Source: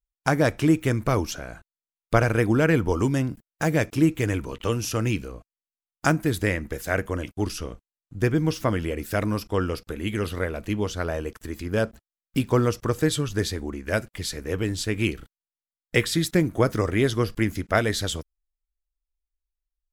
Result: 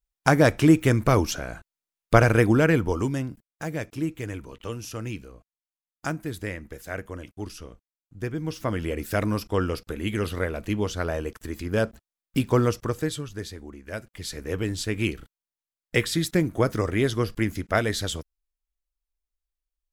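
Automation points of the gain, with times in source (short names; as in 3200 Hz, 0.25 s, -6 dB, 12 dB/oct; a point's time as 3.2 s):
2.37 s +3 dB
3.63 s -8.5 dB
8.37 s -8.5 dB
8.93 s 0 dB
12.7 s 0 dB
13.34 s -9.5 dB
13.99 s -9.5 dB
14.4 s -1.5 dB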